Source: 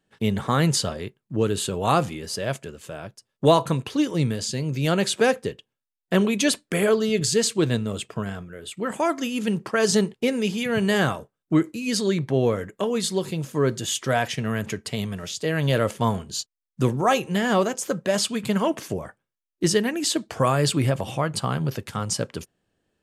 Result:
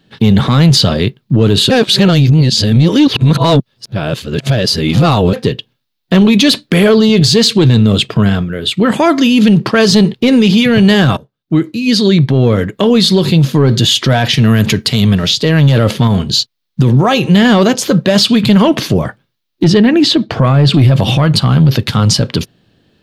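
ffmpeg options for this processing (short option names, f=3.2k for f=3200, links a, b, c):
-filter_complex "[0:a]asettb=1/sr,asplit=3[a][b][c];[a]atrim=end=14.334[d];[b]atrim=start=14.33:end=15.01,asetpts=PTS-STARTPTS,afade=t=in:d=0.004:c=qsin,afade=t=out:st=0.676:d=0.004:c=qsin,highshelf=f=6.4k:g=9[e];[c]atrim=start=15.006[f];[d][e]acrossfade=d=0.004:c1=hsin:c2=qsin[g];[g][f]acrossfade=d=0.004:c1=qsin:c2=hsin,asettb=1/sr,asplit=3[h][i][j];[h]atrim=end=16.074[k];[i]atrim=start=16.07:end=17.3,asetpts=PTS-STARTPTS,afade=t=in:d=0.004:c=qsin,afade=t=out:st=1.226:d=0.004:c=qsin,acompressor=threshold=-28dB:ratio=2.5:attack=3.2:release=140:knee=1:detection=peak[l];[j]atrim=start=17.296[m];[k][l]acrossfade=d=0.004:c1=hsin:c2=qsin[n];[n][m]acrossfade=d=0.004:c1=qsin:c2=hsin,asettb=1/sr,asplit=3[o][p][q];[o]atrim=end=19.644[r];[p]atrim=start=19.64:end=20.74,asetpts=PTS-STARTPTS,afade=t=in:d=0.004:c=qsin,afade=t=out:st=1.096:d=0.004:c=qsin,lowpass=f=1.9k:p=1[s];[q]atrim=start=20.736[t];[r][s]acrossfade=d=0.004:c1=hsin:c2=qsin[u];[u][t]acrossfade=d=0.004:c1=qsin:c2=hsin,asplit=4[v][w][x][y];[v]atrim=end=1.702[z];[w]atrim=start=1.698:end=5.332,asetpts=PTS-STARTPTS,areverse[aa];[x]atrim=start=5.328:end=11.17,asetpts=PTS-STARTPTS,afade=t=out:st=5.838:d=0.004:c=hsin:silence=0.105925[ab];[y]atrim=start=11.17,asetpts=PTS-STARTPTS,afade=t=in:d=1.93:silence=0.105925[ac];[z][aa]acrossfade=d=0.004:c1=hsin:c2=hsin[ad];[ab][ac]concat=n=2:v=0:a=1[ae];[ad][ae]acrossfade=d=0.004:c1=hsin:c2=hsin,equalizer=f=125:t=o:w=1:g=9,equalizer=f=250:t=o:w=1:g=5,equalizer=f=4k:t=o:w=1:g=12,equalizer=f=8k:t=o:w=1:g=-10,acontrast=84,alimiter=level_in=9.5dB:limit=-1dB:release=50:level=0:latency=1,volume=-1dB"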